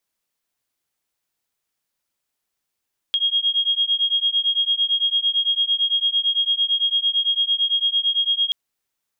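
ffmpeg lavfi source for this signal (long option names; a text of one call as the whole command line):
ffmpeg -f lavfi -i "aevalsrc='0.0944*(sin(2*PI*3260*t)+sin(2*PI*3268.9*t))':duration=5.38:sample_rate=44100" out.wav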